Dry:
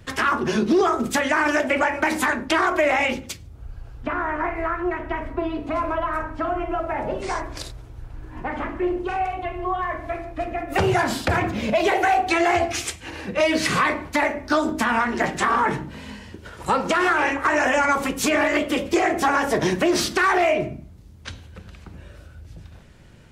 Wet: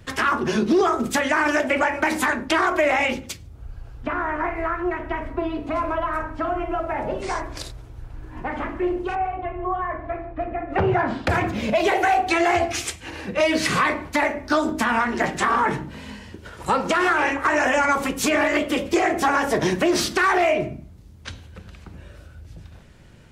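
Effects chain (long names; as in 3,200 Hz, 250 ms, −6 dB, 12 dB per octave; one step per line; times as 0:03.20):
0:09.15–0:11.27: low-pass filter 1,800 Hz 12 dB per octave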